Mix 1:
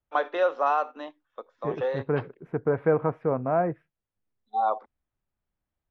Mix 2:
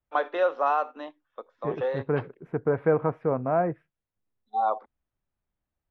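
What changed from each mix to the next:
first voice: add distance through air 68 m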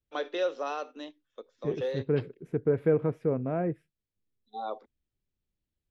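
master: add FFT filter 430 Hz 0 dB, 760 Hz -12 dB, 1.1 kHz -13 dB, 7.4 kHz +15 dB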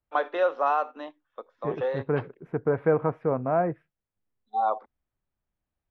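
master: add FFT filter 430 Hz 0 dB, 760 Hz +12 dB, 1.1 kHz +13 dB, 7.4 kHz -15 dB

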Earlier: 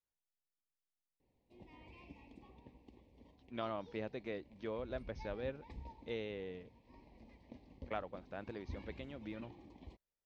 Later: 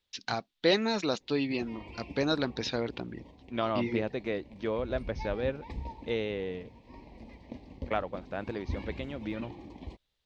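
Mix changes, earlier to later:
first voice: unmuted; second voice +10.0 dB; background +11.0 dB

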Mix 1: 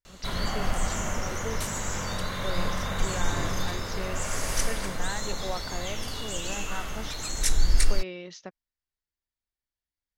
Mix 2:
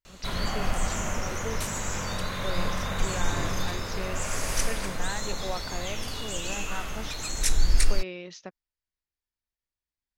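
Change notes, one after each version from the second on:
master: remove band-stop 2.5 kHz, Q 16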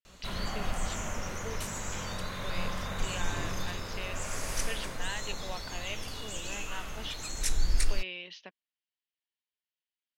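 speech: add cabinet simulation 340–4600 Hz, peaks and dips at 360 Hz -8 dB, 540 Hz -7 dB, 780 Hz -7 dB, 1.3 kHz -10 dB, 3 kHz +10 dB; background -5.5 dB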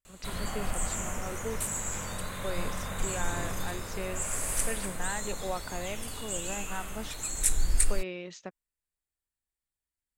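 speech: remove cabinet simulation 340–4600 Hz, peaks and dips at 360 Hz -8 dB, 540 Hz -7 dB, 780 Hz -7 dB, 1.3 kHz -10 dB, 3 kHz +10 dB; master: add resonant high shelf 6.8 kHz +6.5 dB, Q 3

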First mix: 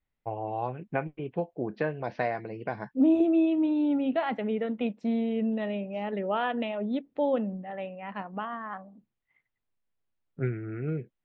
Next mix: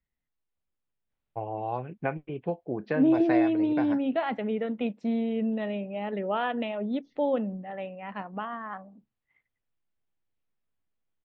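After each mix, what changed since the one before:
first voice: entry +1.10 s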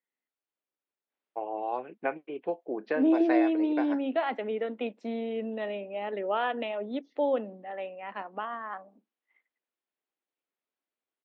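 master: add high-pass 280 Hz 24 dB/octave

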